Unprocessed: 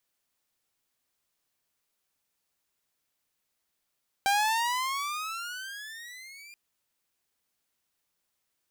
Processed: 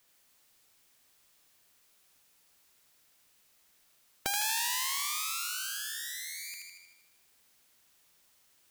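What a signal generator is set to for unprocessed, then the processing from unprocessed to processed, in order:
gliding synth tone saw, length 2.28 s, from 784 Hz, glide +19.5 st, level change -25 dB, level -19 dB
on a send: feedback echo behind a high-pass 78 ms, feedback 55%, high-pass 1.7 kHz, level -3 dB; on the sum: spectrum-flattening compressor 2:1

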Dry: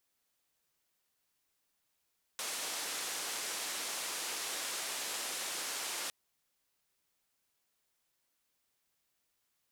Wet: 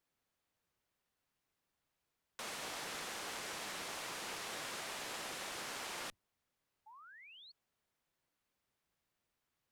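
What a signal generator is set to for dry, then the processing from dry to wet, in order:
noise band 330–9600 Hz, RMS -39 dBFS 3.71 s
octave divider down 1 oct, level -2 dB; treble shelf 3.5 kHz -11.5 dB; painted sound rise, 6.86–7.52 s, 830–4500 Hz -57 dBFS

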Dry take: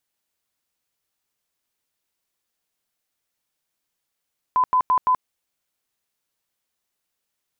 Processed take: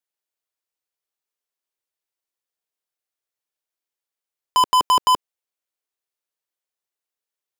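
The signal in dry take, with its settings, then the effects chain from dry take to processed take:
tone bursts 1.01 kHz, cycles 79, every 0.17 s, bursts 4, -14.5 dBFS
resonant low shelf 290 Hz -7.5 dB, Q 1.5; waveshaping leveller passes 5

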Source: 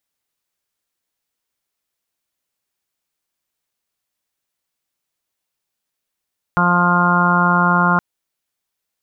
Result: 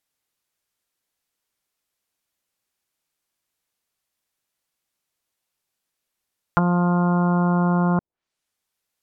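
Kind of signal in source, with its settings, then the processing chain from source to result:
steady additive tone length 1.42 s, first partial 176 Hz, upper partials -11/-12/-6.5/-4.5/-1/-5/0 dB, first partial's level -17 dB
low-pass that closes with the level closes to 550 Hz, closed at -15.5 dBFS

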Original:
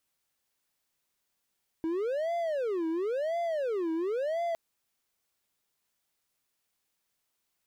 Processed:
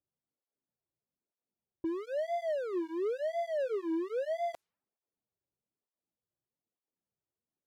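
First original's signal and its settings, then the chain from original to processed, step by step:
siren wail 322–687 Hz 0.96 per s triangle -26 dBFS 2.71 s
level-controlled noise filter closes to 510 Hz, open at -30.5 dBFS; cancelling through-zero flanger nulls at 1.1 Hz, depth 4.7 ms

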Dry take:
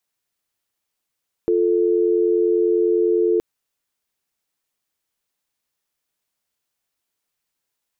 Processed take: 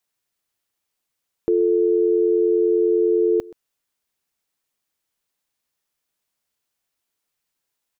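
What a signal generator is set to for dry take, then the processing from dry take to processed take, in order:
call progress tone dial tone, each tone -17.5 dBFS 1.92 s
delay 127 ms -22 dB

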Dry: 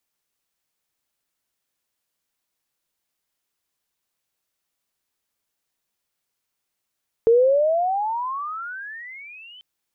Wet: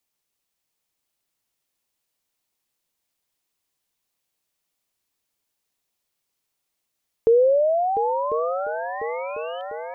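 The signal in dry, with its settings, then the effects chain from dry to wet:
gliding synth tone sine, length 2.34 s, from 448 Hz, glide +33.5 st, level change -30.5 dB, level -11 dB
peaking EQ 1.5 kHz -4 dB 0.58 oct; multi-head delay 349 ms, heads second and third, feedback 64%, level -10 dB

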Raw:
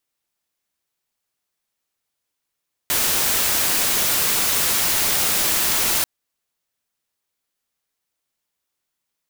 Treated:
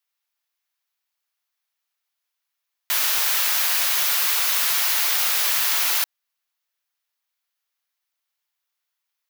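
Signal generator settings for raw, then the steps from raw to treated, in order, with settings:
noise white, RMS -19.5 dBFS 3.14 s
high-pass 900 Hz 12 dB/octave; peaking EQ 8.4 kHz -6.5 dB 0.68 oct

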